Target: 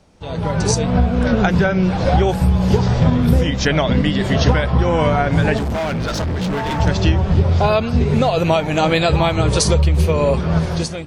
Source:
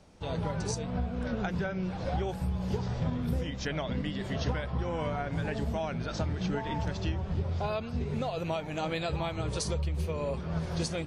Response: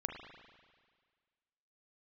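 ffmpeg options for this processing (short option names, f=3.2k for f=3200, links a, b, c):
-filter_complex "[0:a]dynaudnorm=f=110:g=9:m=12.5dB,asettb=1/sr,asplit=3[a][b][c];[a]atrim=end=5.574[d];[b]atrim=start=5.57:end=6.8,asetpts=PTS-STARTPTS,afade=t=in:d=0.004:c=qsin,afade=t=out:st=1.226:d=0.004:c=qsin,asoftclip=type=hard:threshold=-23dB[e];[c]atrim=start=6.796[f];[d][e]acrossfade=d=0.004:c1=hsin:c2=qsin[g];[g][f]acrossfade=d=0.004:c1=qsin:c2=hsin,volume=4.5dB"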